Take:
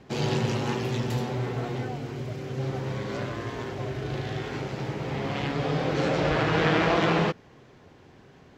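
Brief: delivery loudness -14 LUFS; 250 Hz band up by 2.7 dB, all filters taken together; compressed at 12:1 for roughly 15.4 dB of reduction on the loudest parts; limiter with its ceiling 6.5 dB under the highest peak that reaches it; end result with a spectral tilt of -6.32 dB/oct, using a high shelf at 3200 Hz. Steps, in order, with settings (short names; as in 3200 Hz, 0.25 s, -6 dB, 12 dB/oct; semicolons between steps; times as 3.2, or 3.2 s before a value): bell 250 Hz +4 dB; high shelf 3200 Hz -5.5 dB; compressor 12:1, threshold -34 dBFS; gain +26 dB; limiter -5 dBFS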